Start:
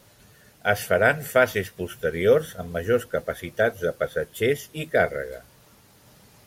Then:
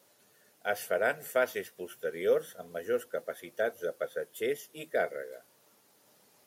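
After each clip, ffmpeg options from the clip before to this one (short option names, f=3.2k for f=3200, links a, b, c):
-af "highpass=340,equalizer=f=2.1k:w=0.37:g=-5,volume=-6dB"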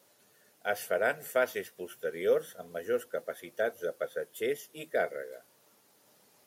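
-af anull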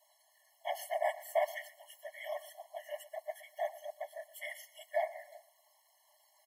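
-af "afftfilt=real='hypot(re,im)*cos(2*PI*random(0))':imag='hypot(re,im)*sin(2*PI*random(1))':win_size=512:overlap=0.75,aecho=1:1:121|242|363:0.133|0.0413|0.0128,afftfilt=real='re*eq(mod(floor(b*sr/1024/560),2),1)':imag='im*eq(mod(floor(b*sr/1024/560),2),1)':win_size=1024:overlap=0.75,volume=4.5dB"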